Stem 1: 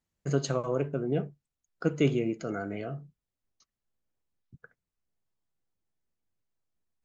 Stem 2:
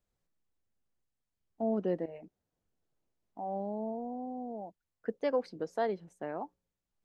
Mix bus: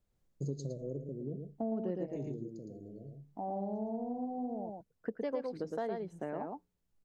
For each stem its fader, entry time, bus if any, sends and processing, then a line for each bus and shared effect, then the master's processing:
−5.0 dB, 0.15 s, no send, echo send −17.5 dB, inverse Chebyshev band-stop filter 900–2,700 Hz, stop band 40 dB; auto-filter notch sine 1.9 Hz 840–4,200 Hz; automatic ducking −13 dB, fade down 1.55 s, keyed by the second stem
−1.0 dB, 0.00 s, no send, echo send −4.5 dB, no processing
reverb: not used
echo: single-tap delay 112 ms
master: low-shelf EQ 410 Hz +7.5 dB; downward compressor 3 to 1, threshold −35 dBFS, peak gain reduction 10.5 dB

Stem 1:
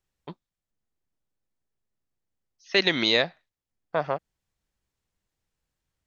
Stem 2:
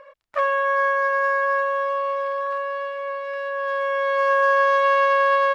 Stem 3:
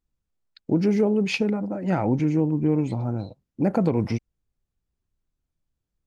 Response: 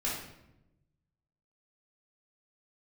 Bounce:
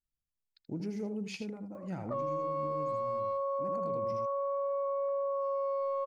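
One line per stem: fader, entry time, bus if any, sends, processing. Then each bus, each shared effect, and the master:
muted
−2.5 dB, 1.75 s, bus A, no send, no echo send, adaptive Wiener filter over 15 samples; compressor whose output falls as the input rises −23 dBFS; Savitzky-Golay smoothing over 65 samples
−19.0 dB, 0.00 s, bus A, no send, echo send −9.5 dB, no processing
bus A: 0.0 dB, brickwall limiter −27.5 dBFS, peak gain reduction 9.5 dB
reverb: not used
echo: single-tap delay 80 ms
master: bass and treble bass +5 dB, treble +9 dB

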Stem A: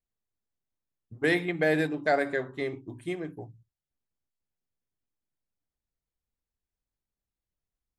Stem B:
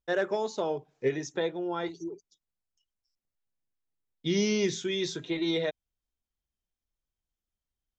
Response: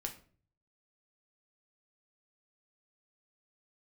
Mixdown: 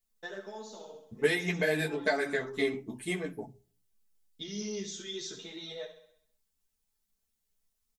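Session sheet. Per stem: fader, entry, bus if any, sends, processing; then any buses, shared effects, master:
+2.5 dB, 0.00 s, send −9.5 dB, no echo send, downward compressor 6 to 1, threshold −28 dBFS, peak gain reduction 8.5 dB
−3.5 dB, 0.15 s, no send, echo send −9.5 dB, parametric band 2,300 Hz −4 dB 0.42 octaves; downward compressor 6 to 1, threshold −34 dBFS, peak gain reduction 11.5 dB; automatic ducking −11 dB, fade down 0.75 s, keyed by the first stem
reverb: on, RT60 0.45 s, pre-delay 6 ms
echo: repeating echo 65 ms, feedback 53%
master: high-shelf EQ 3,800 Hz +11.5 dB; comb filter 4.6 ms, depth 53%; string-ensemble chorus

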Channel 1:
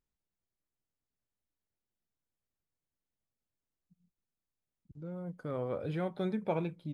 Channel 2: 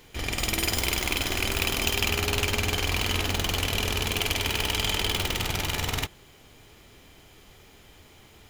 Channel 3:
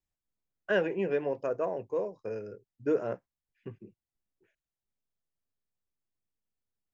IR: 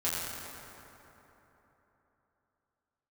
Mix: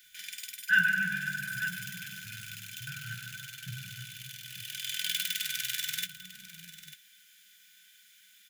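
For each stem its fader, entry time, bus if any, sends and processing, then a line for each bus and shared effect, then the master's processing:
−16.5 dB, 0.00 s, send −7 dB, no echo send, high-pass filter 250 Hz 6 dB per octave
−7.5 dB, 0.00 s, no send, echo send −15.5 dB, elliptic high-pass filter 210 Hz, stop band 40 dB; high-shelf EQ 5,100 Hz +11.5 dB; automatic ducking −16 dB, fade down 0.60 s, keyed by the third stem
+1.0 dB, 0.00 s, send −4.5 dB, echo send −6.5 dB, reverb reduction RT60 0.62 s; rotating-speaker cabinet horn 6.3 Hz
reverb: on, RT60 3.6 s, pre-delay 6 ms
echo: single-tap delay 896 ms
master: Chebyshev band-stop filter 180–1,500 Hz, order 5; hollow resonant body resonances 870/1,500/3,500 Hz, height 17 dB, ringing for 85 ms

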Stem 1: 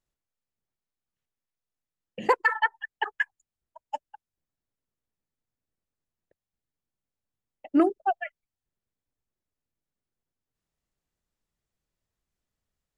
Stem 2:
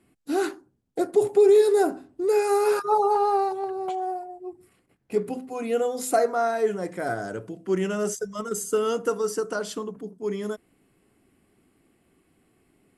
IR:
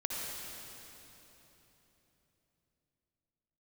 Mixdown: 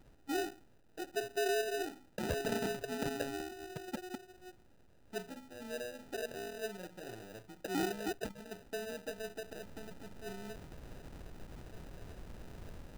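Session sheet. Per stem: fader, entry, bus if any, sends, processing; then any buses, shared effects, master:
0:09.10 −17.5 dB → 0:09.77 −5.5 dB, 0.00 s, no send, low-shelf EQ 250 Hz +4 dB; floating-point word with a short mantissa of 2 bits; envelope flattener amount 70%
−10.5 dB, 0.00 s, no send, tilt shelving filter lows +6.5 dB; automatic ducking −11 dB, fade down 0.80 s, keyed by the first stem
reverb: not used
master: sample-rate reduction 1,100 Hz, jitter 0%

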